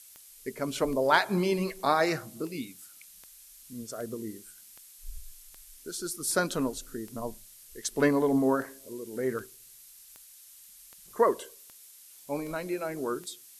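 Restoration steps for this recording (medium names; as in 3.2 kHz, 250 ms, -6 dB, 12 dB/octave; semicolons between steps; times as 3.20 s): clip repair -9.5 dBFS; de-click; noise print and reduce 22 dB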